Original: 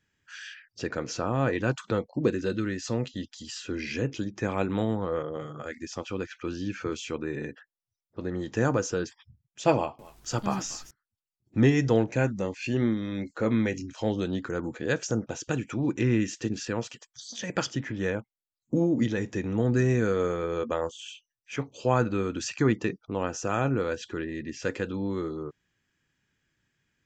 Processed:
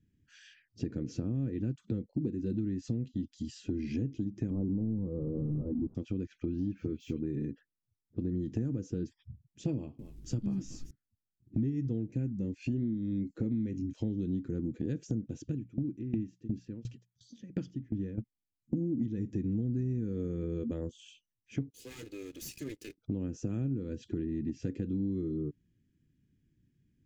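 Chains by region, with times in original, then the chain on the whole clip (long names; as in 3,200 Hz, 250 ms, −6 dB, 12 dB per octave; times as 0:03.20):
0:04.50–0:05.95: converter with a step at zero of −28.5 dBFS + Butterworth low-pass 1,100 Hz 48 dB per octave
0:06.45–0:07.24: high-frequency loss of the air 54 metres + all-pass dispersion highs, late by 49 ms, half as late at 2,800 Hz + linearly interpolated sample-rate reduction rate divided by 2×
0:15.42–0:18.18: high-frequency loss of the air 64 metres + mains-hum notches 60/120/180 Hz + tremolo with a ramp in dB decaying 2.8 Hz, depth 23 dB
0:21.70–0:22.98: lower of the sound and its delayed copy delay 2.4 ms + first difference + leveller curve on the samples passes 3
whole clip: drawn EQ curve 290 Hz 0 dB, 750 Hz −27 dB, 2,100 Hz −21 dB; downward compressor 6 to 1, threshold −39 dBFS; parametric band 1,200 Hz −6.5 dB 0.96 octaves; level +8.5 dB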